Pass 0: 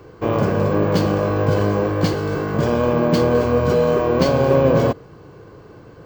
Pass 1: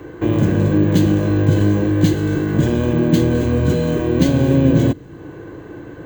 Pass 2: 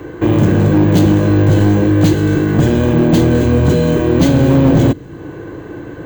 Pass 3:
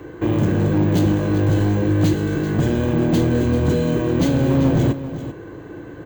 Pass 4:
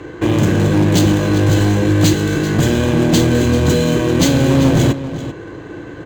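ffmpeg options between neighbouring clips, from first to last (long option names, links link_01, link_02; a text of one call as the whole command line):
ffmpeg -i in.wav -filter_complex "[0:a]superequalizer=6b=2.51:10b=0.708:11b=1.78:14b=0.282:16b=0.631,acrossover=split=270|3000[link_01][link_02][link_03];[link_02]acompressor=threshold=-36dB:ratio=2.5[link_04];[link_01][link_04][link_03]amix=inputs=3:normalize=0,volume=5.5dB" out.wav
ffmpeg -i in.wav -af "asoftclip=type=hard:threshold=-11dB,volume=5.5dB" out.wav
ffmpeg -i in.wav -af "aecho=1:1:390:0.251,volume=-7dB" out.wav
ffmpeg -i in.wav -af "crystalizer=i=5:c=0,adynamicsmooth=sensitivity=8:basefreq=3700,volume=4dB" out.wav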